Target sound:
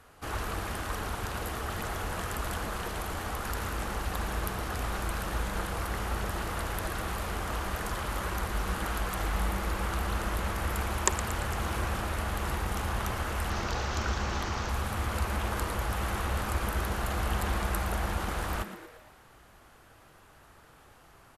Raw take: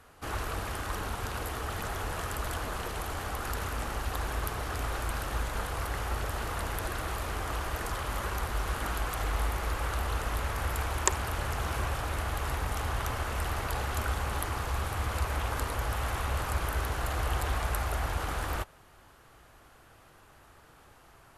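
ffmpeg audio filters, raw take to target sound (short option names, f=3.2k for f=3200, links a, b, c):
-filter_complex "[0:a]asettb=1/sr,asplit=3[a][b][c];[a]atrim=end=13.504[d];[b]atrim=start=13.5:end=14.69,asetpts=PTS-STARTPTS,afade=t=in:d=0.004:c=qsin,afade=t=out:st=1.186:d=0.004:c=qsin,highshelf=f=7.8k:t=q:w=3:g=-11[e];[c]atrim=start=14.686[f];[d][e]acrossfade=d=0.004:c1=hsin:c2=qsin[g];[g][f]acrossfade=d=0.004:c1=qsin:c2=hsin,asplit=7[h][i][j][k][l][m][n];[i]adelay=115,afreqshift=140,volume=-12dB[o];[j]adelay=230,afreqshift=280,volume=-17dB[p];[k]adelay=345,afreqshift=420,volume=-22.1dB[q];[l]adelay=460,afreqshift=560,volume=-27.1dB[r];[m]adelay=575,afreqshift=700,volume=-32.1dB[s];[n]adelay=690,afreqshift=840,volume=-37.2dB[t];[h][o][p][q][r][s][t]amix=inputs=7:normalize=0"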